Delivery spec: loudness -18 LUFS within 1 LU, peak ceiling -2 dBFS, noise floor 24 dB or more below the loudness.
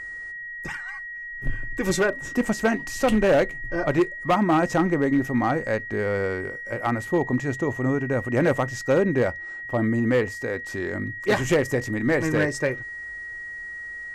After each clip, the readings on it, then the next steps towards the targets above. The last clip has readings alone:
clipped samples 1.0%; clipping level -14.0 dBFS; steady tone 1.9 kHz; tone level -33 dBFS; loudness -24.5 LUFS; peak level -14.0 dBFS; loudness target -18.0 LUFS
-> clip repair -14 dBFS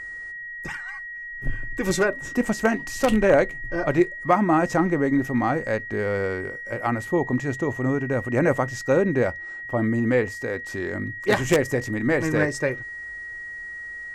clipped samples 0.0%; steady tone 1.9 kHz; tone level -33 dBFS
-> band-stop 1.9 kHz, Q 30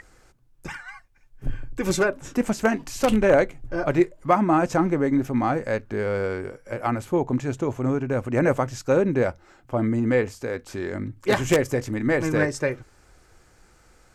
steady tone not found; loudness -24.0 LUFS; peak level -4.5 dBFS; loudness target -18.0 LUFS
-> trim +6 dB; peak limiter -2 dBFS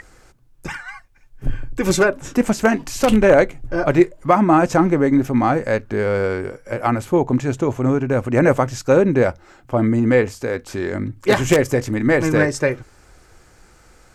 loudness -18.0 LUFS; peak level -2.0 dBFS; noise floor -51 dBFS

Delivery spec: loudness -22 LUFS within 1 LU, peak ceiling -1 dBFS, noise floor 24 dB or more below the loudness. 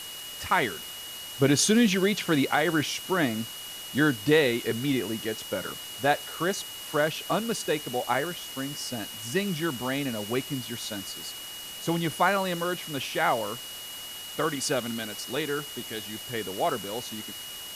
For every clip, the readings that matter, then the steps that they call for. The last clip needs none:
steady tone 2.9 kHz; tone level -40 dBFS; noise floor -40 dBFS; noise floor target -52 dBFS; loudness -28.0 LUFS; peak level -10.5 dBFS; loudness target -22.0 LUFS
-> band-stop 2.9 kHz, Q 30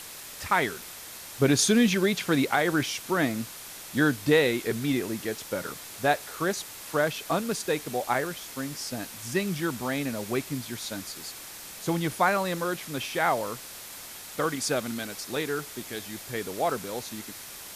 steady tone not found; noise floor -43 dBFS; noise floor target -52 dBFS
-> noise reduction 9 dB, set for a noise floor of -43 dBFS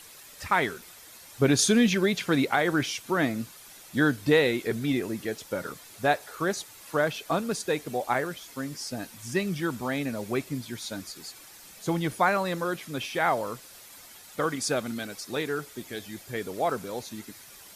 noise floor -49 dBFS; noise floor target -52 dBFS
-> noise reduction 6 dB, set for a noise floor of -49 dBFS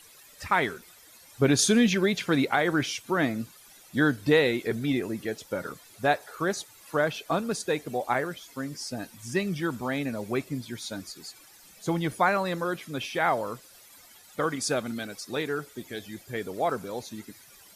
noise floor -53 dBFS; loudness -28.0 LUFS; peak level -10.5 dBFS; loudness target -22.0 LUFS
-> trim +6 dB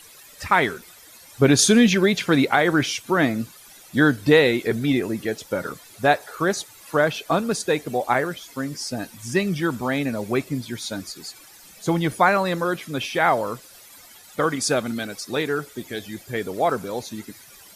loudness -22.0 LUFS; peak level -4.5 dBFS; noise floor -47 dBFS

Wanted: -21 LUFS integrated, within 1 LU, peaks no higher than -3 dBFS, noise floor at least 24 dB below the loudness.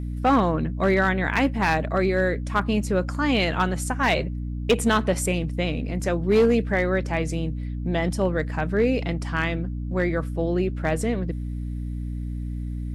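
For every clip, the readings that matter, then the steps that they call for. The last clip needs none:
clipped samples 0.4%; clipping level -12.5 dBFS; hum 60 Hz; highest harmonic 300 Hz; hum level -27 dBFS; loudness -24.0 LUFS; peak level -12.5 dBFS; loudness target -21.0 LUFS
-> clip repair -12.5 dBFS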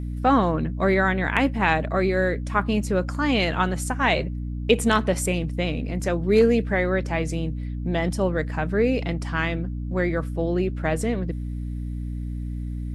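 clipped samples 0.0%; hum 60 Hz; highest harmonic 300 Hz; hum level -27 dBFS
-> de-hum 60 Hz, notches 5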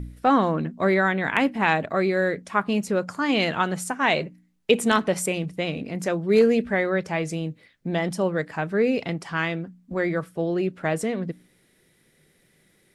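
hum not found; loudness -24.0 LUFS; peak level -4.0 dBFS; loudness target -21.0 LUFS
-> trim +3 dB; peak limiter -3 dBFS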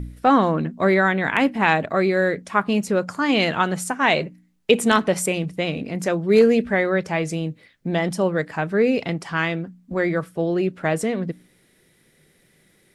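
loudness -21.0 LUFS; peak level -3.0 dBFS; noise floor -60 dBFS

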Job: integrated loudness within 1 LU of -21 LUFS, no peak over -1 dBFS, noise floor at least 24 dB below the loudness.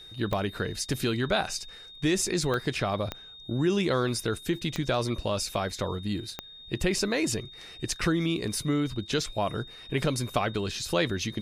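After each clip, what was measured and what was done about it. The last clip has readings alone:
clicks found 5; steady tone 3.7 kHz; tone level -45 dBFS; loudness -29.0 LUFS; peak level -11.5 dBFS; loudness target -21.0 LUFS
-> de-click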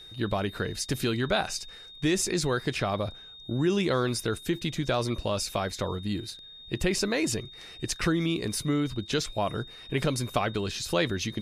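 clicks found 0; steady tone 3.7 kHz; tone level -45 dBFS
-> band-stop 3.7 kHz, Q 30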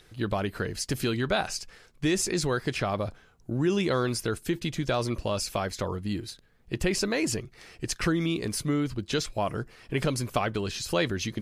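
steady tone not found; loudness -29.5 LUFS; peak level -11.5 dBFS; loudness target -21.0 LUFS
-> trim +8.5 dB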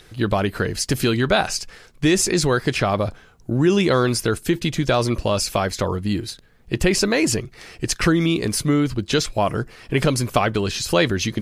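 loudness -21.0 LUFS; peak level -3.0 dBFS; noise floor -49 dBFS

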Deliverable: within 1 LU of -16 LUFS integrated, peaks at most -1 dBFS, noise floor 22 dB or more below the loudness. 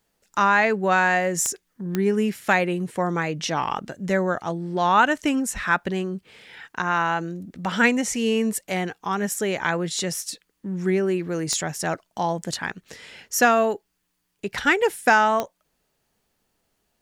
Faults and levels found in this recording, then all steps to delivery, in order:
clicks found 4; loudness -23.0 LUFS; peak level -5.5 dBFS; loudness target -16.0 LUFS
-> de-click; trim +7 dB; peak limiter -1 dBFS

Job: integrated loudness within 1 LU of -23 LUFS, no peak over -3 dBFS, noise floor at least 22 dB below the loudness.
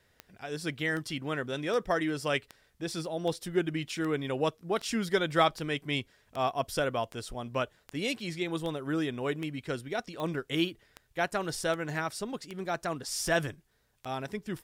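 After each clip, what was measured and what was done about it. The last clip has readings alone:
clicks found 19; loudness -32.5 LUFS; peak level -13.0 dBFS; loudness target -23.0 LUFS
-> de-click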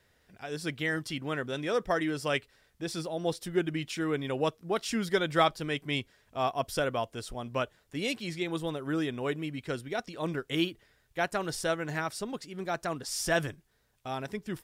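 clicks found 0; loudness -32.5 LUFS; peak level -13.0 dBFS; loudness target -23.0 LUFS
-> trim +9.5 dB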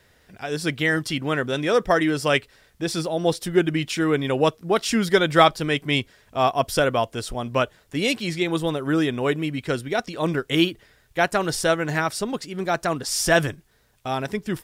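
loudness -23.0 LUFS; peak level -3.5 dBFS; noise floor -59 dBFS

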